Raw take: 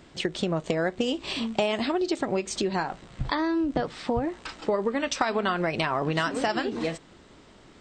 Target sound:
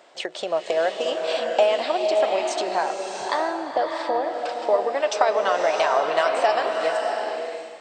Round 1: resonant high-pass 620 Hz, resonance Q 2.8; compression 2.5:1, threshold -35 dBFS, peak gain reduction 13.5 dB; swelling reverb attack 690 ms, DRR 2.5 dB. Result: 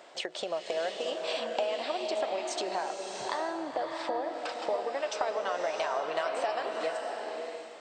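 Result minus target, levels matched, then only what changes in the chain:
compression: peak gain reduction +13.5 dB
remove: compression 2.5:1, threshold -35 dBFS, peak gain reduction 13.5 dB

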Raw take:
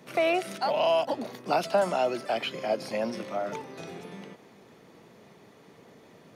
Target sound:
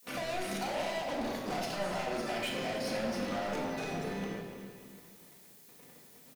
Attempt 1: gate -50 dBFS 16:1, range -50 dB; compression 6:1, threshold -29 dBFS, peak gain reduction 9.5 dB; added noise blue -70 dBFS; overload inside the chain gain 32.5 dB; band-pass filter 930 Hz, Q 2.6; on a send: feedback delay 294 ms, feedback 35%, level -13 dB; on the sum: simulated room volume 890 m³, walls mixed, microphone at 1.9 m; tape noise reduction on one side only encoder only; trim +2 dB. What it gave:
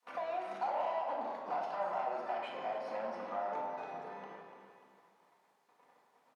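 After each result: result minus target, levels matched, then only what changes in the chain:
1 kHz band +5.0 dB; overload inside the chain: distortion -5 dB
remove: band-pass filter 930 Hz, Q 2.6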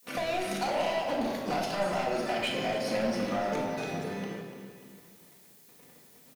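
overload inside the chain: distortion -5 dB
change: overload inside the chain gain 39.5 dB

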